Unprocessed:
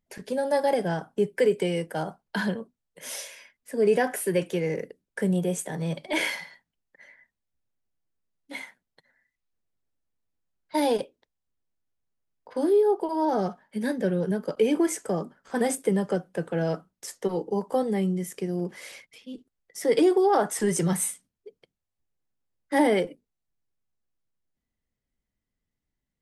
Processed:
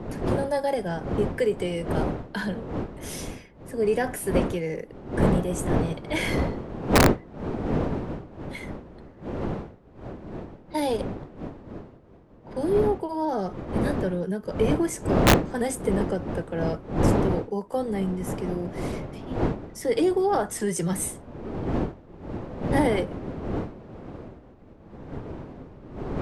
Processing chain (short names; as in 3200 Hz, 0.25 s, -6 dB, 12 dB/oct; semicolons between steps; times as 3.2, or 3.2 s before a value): wind noise 380 Hz -27 dBFS; wrapped overs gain 6.5 dB; gain -2 dB